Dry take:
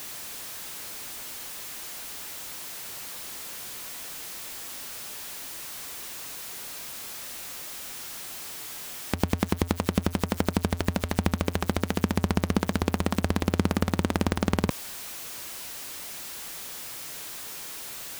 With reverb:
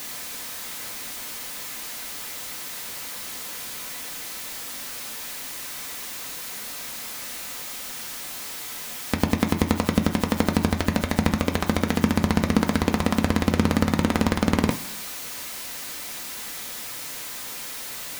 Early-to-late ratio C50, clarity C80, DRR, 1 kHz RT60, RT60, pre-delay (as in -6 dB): 11.0 dB, 13.5 dB, 2.5 dB, 1.0 s, 1.0 s, 3 ms